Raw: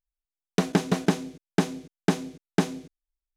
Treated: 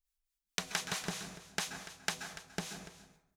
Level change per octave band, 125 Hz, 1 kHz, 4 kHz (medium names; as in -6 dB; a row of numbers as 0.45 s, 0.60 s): -19.0 dB, -11.0 dB, -2.0 dB